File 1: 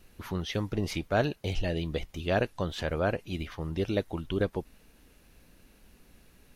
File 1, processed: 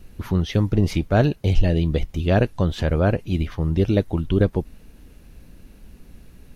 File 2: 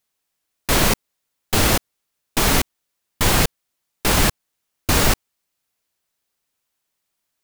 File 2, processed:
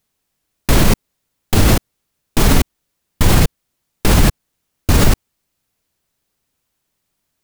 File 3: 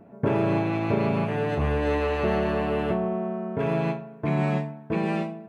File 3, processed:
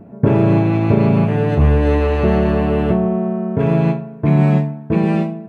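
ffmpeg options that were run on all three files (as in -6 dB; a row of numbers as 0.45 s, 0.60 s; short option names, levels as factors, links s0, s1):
-af "lowshelf=f=340:g=11.5,alimiter=level_in=1.68:limit=0.891:release=50:level=0:latency=1,volume=0.891"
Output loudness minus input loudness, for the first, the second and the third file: +10.0 LU, +3.0 LU, +10.0 LU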